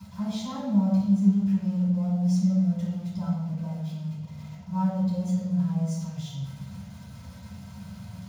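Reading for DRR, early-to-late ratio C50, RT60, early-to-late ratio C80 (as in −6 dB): −15.5 dB, 0.0 dB, 1.0 s, 2.0 dB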